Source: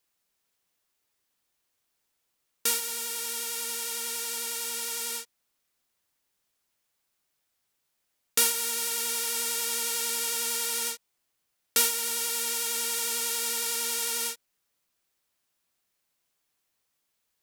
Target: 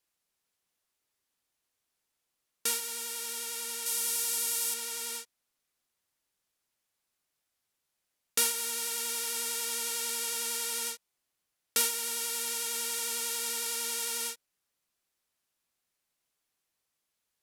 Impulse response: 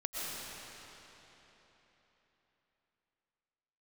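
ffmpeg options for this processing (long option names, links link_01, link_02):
-filter_complex "[0:a]asettb=1/sr,asplit=3[link_01][link_02][link_03];[link_01]atrim=end=3.864[link_04];[link_02]atrim=start=3.86:end=4.74,asetpts=PTS-STARTPTS,afade=type=in:duration=0.004:curve=qsin,afade=type=out:start_time=0.876:duration=0.004:curve=qsin,highshelf=frequency=5400:gain=9[link_05];[link_03]atrim=start=4.736[link_06];[link_04][link_05]acrossfade=duration=0.004:curve1=hsin:curve2=qsin[link_07];[link_07][link_06]acrossfade=duration=0.004:curve1=qsin:curve2=hsin[link_08];[1:a]atrim=start_sample=2205,atrim=end_sample=3528,asetrate=25137,aresample=44100[link_09];[link_08][link_09]afir=irnorm=-1:irlink=0,volume=-4dB"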